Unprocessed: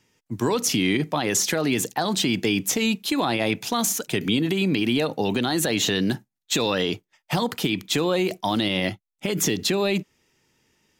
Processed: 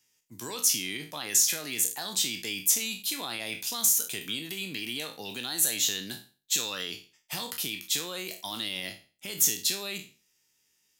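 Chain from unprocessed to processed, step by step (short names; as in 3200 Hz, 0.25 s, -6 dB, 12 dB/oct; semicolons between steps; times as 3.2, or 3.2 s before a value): spectral trails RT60 0.36 s; pre-emphasis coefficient 0.9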